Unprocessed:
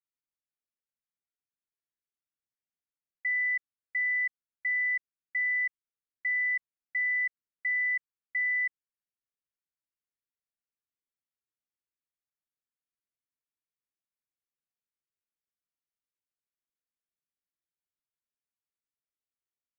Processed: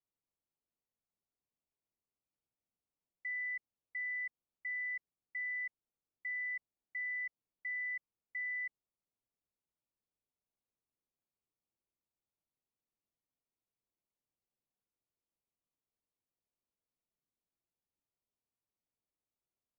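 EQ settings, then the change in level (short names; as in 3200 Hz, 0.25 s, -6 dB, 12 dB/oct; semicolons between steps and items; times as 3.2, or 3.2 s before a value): running mean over 26 samples; +6.5 dB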